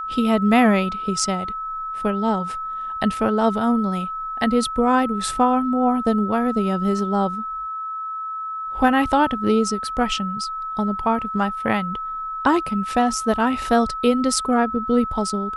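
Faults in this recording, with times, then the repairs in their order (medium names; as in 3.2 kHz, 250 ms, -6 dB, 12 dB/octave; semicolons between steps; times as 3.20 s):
whine 1.3 kHz -26 dBFS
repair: band-stop 1.3 kHz, Q 30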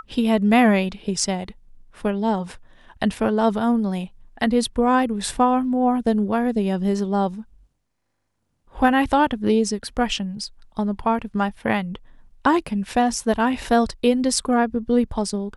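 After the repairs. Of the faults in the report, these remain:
nothing left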